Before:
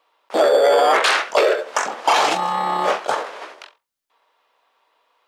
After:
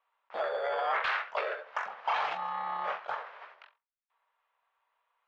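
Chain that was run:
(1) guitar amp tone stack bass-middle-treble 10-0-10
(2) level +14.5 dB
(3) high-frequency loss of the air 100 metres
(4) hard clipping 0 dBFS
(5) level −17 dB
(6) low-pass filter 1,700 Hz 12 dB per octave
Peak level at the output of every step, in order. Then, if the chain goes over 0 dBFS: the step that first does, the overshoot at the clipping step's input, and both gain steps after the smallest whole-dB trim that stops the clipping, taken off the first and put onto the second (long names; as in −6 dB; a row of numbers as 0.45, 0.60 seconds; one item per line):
−8.5, +6.0, +4.0, 0.0, −17.0, −19.0 dBFS
step 2, 4.0 dB
step 2 +10.5 dB, step 5 −13 dB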